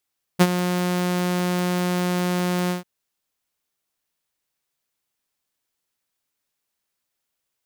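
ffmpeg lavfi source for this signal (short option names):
-f lavfi -i "aevalsrc='0.447*(2*mod(179*t,1)-1)':d=2.444:s=44100,afade=t=in:d=0.023,afade=t=out:st=0.023:d=0.05:silence=0.282,afade=t=out:st=2.31:d=0.134"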